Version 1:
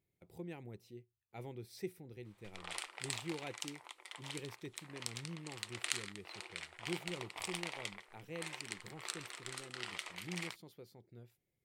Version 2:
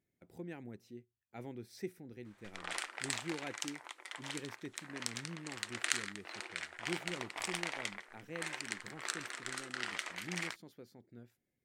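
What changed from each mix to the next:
speech -3.5 dB; master: add fifteen-band graphic EQ 250 Hz +11 dB, 630 Hz +4 dB, 1.6 kHz +10 dB, 6.3 kHz +5 dB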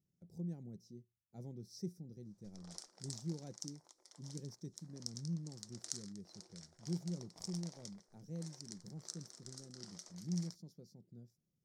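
background -5.0 dB; master: add FFT filter 110 Hz 0 dB, 170 Hz +9 dB, 260 Hz -6 dB, 560 Hz -7 dB, 1.7 kHz -24 dB, 2.7 kHz -28 dB, 5.5 kHz +6 dB, 7.8 kHz -5 dB, 14 kHz -8 dB

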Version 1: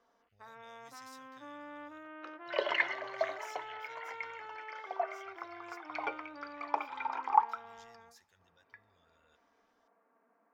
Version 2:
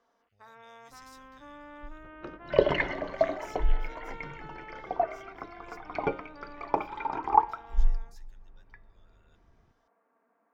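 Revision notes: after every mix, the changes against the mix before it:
second sound: remove high-pass 1 kHz 12 dB/octave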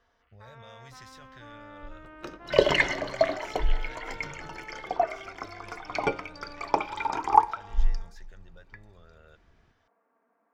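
speech: remove pre-emphasis filter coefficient 0.9; second sound: remove tape spacing loss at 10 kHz 32 dB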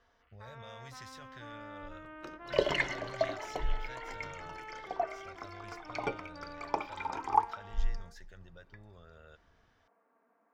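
second sound -8.0 dB

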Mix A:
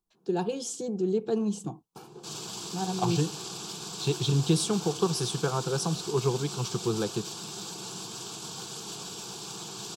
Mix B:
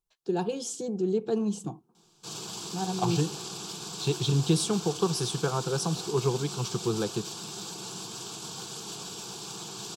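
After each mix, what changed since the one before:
first sound: entry +1.15 s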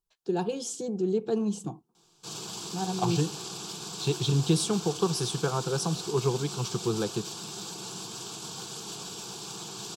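first sound -7.5 dB

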